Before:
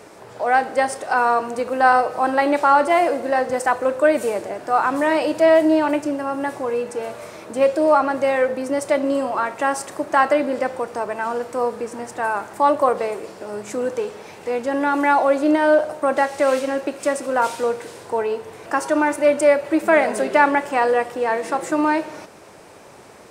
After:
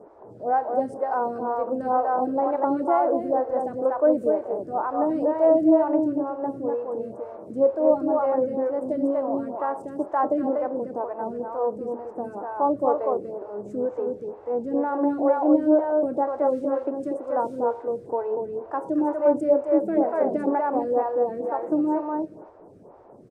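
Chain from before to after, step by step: EQ curve 330 Hz 0 dB, 930 Hz -5 dB, 2400 Hz -27 dB; on a send: echo 0.242 s -4.5 dB; on the sum: photocell phaser 2.1 Hz

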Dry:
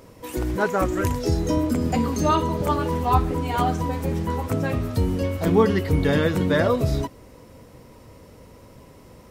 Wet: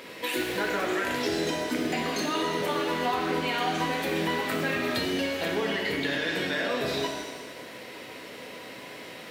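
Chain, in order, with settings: HPF 270 Hz 12 dB/oct; band shelf 2600 Hz +12 dB; vocal rider within 5 dB 2 s; limiter -13.5 dBFS, peak gain reduction 9.5 dB; compressor 5:1, threshold -29 dBFS, peak gain reduction 10 dB; shimmer reverb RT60 1.4 s, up +7 st, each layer -8 dB, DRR 0.5 dB

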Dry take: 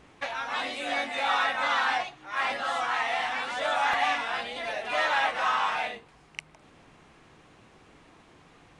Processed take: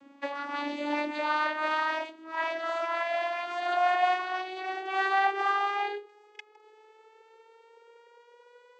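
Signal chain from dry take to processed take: vocoder on a gliding note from C#4, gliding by +10 st

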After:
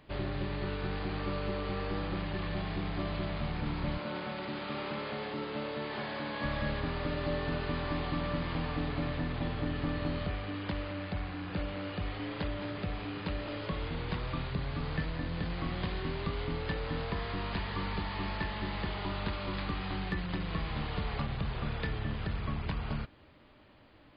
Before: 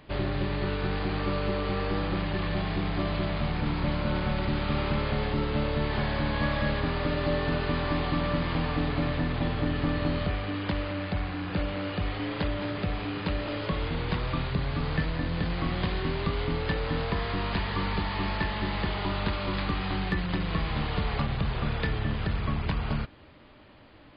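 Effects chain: 3.98–6.44 HPF 230 Hz 12 dB/oct; gain -6 dB

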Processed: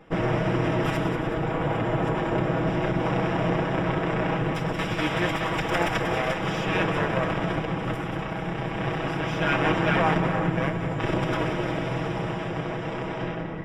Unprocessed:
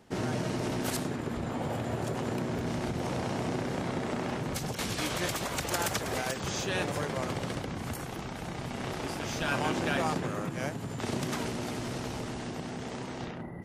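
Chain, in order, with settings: minimum comb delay 6.2 ms; polynomial smoothing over 25 samples; split-band echo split 930 Hz, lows 0.281 s, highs 0.185 s, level -9 dB; gain +9 dB

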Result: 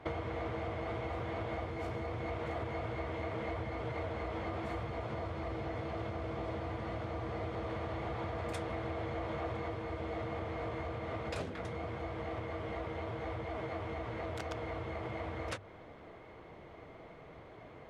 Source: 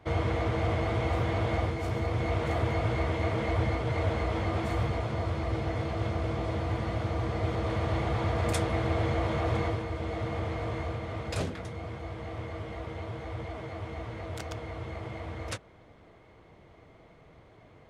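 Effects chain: high shelf 4300 Hz -6.5 dB; notches 50/100 Hz; compressor, threshold -39 dBFS, peak gain reduction 14.5 dB; tone controls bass -5 dB, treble -3 dB; gain +5 dB

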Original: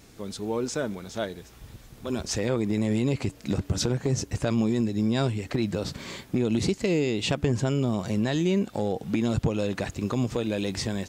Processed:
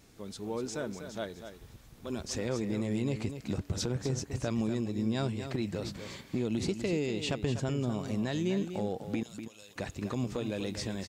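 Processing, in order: 9.23–9.76 pre-emphasis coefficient 0.97; echo 0.246 s -9.5 dB; gain -7 dB

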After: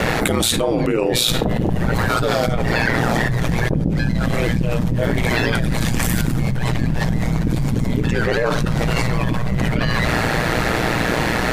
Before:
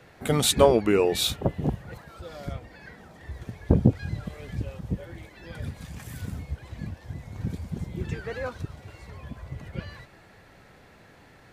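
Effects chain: ring modulator 59 Hz; shoebox room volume 2000 m³, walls furnished, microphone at 0.53 m; fast leveller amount 100%; gain -3 dB

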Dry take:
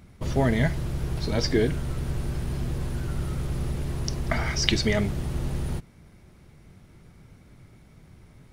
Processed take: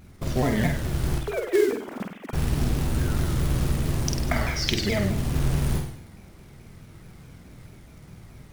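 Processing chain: 1.18–2.33 sine-wave speech; short-mantissa float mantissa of 2-bit; vocal rider within 4 dB 0.5 s; on a send: flutter echo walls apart 8.5 m, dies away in 0.62 s; on the sum: shaped vibrato saw down 4.7 Hz, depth 160 cents

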